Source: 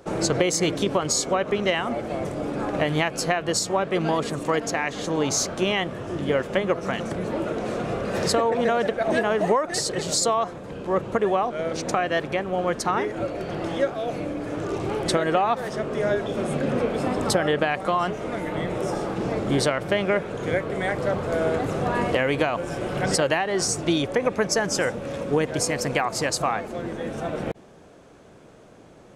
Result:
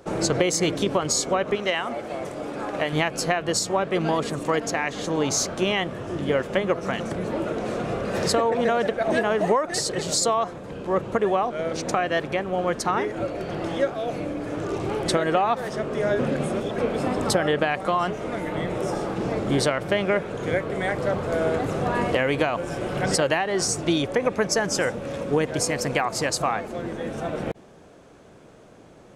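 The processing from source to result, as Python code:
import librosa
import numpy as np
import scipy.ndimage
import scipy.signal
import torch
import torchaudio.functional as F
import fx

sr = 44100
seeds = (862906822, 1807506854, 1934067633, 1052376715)

y = fx.low_shelf(x, sr, hz=270.0, db=-10.5, at=(1.55, 2.93))
y = fx.edit(y, sr, fx.reverse_span(start_s=16.19, length_s=0.59), tone=tone)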